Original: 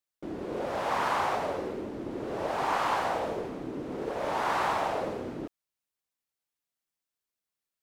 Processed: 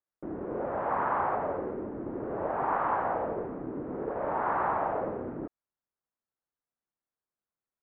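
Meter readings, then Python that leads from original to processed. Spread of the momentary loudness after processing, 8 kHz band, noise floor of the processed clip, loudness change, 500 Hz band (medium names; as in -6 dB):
9 LU, under -30 dB, under -85 dBFS, -0.5 dB, 0.0 dB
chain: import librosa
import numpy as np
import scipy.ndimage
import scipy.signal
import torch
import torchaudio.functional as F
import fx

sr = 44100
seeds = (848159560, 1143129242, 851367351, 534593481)

y = scipy.signal.sosfilt(scipy.signal.butter(4, 1600.0, 'lowpass', fs=sr, output='sos'), x)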